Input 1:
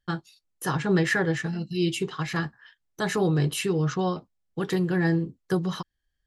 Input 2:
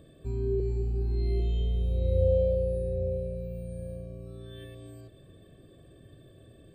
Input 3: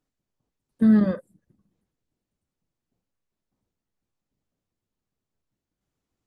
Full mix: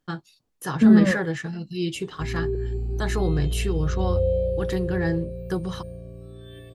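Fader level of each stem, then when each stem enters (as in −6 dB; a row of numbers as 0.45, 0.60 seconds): −2.0, +1.5, +2.5 decibels; 0.00, 1.95, 0.00 seconds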